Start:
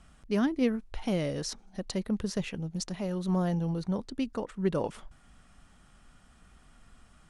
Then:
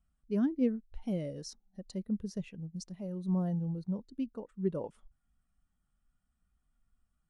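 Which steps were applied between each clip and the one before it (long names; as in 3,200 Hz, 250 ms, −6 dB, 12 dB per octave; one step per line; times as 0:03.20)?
high-shelf EQ 7,900 Hz +11 dB
every bin expanded away from the loudest bin 1.5 to 1
level −4 dB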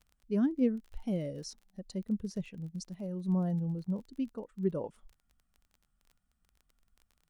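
surface crackle 25 per second −48 dBFS
level +1 dB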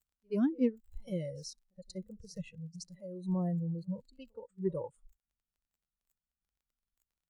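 backwards echo 75 ms −20 dB
harmonic generator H 3 −36 dB, 7 −45 dB, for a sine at −17.5 dBFS
noise reduction from a noise print of the clip's start 18 dB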